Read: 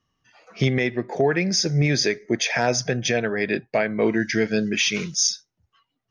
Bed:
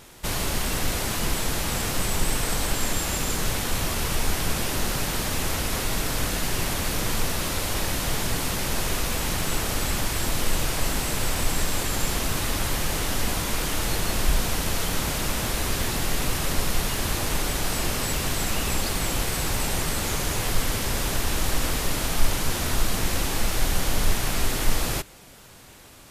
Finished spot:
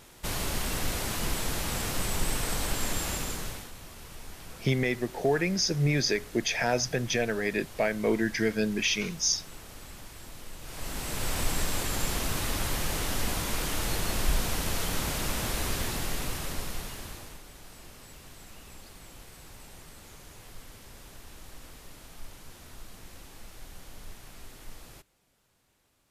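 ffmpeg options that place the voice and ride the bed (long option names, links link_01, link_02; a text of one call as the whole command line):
ffmpeg -i stem1.wav -i stem2.wav -filter_complex "[0:a]adelay=4050,volume=-5.5dB[link_01];[1:a]volume=10.5dB,afade=type=out:start_time=3.08:duration=0.64:silence=0.177828,afade=type=in:start_time=10.61:duration=0.77:silence=0.16788,afade=type=out:start_time=15.64:duration=1.77:silence=0.11885[link_02];[link_01][link_02]amix=inputs=2:normalize=0" out.wav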